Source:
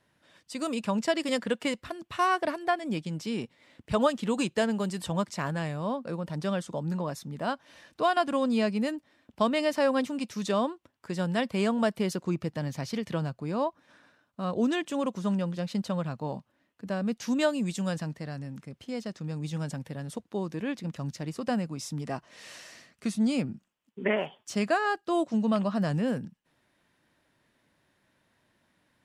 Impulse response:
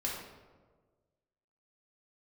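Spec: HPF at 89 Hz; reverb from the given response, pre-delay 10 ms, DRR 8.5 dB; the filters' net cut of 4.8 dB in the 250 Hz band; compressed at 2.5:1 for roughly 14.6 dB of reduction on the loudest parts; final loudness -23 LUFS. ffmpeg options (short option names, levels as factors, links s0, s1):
-filter_complex "[0:a]highpass=89,equalizer=f=250:t=o:g=-6,acompressor=threshold=0.00631:ratio=2.5,asplit=2[s0][s1];[1:a]atrim=start_sample=2205,adelay=10[s2];[s1][s2]afir=irnorm=-1:irlink=0,volume=0.251[s3];[s0][s3]amix=inputs=2:normalize=0,volume=10"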